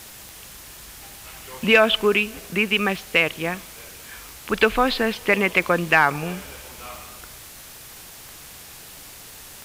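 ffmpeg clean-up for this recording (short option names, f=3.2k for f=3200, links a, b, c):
-af "adeclick=t=4,afwtdn=0.0089"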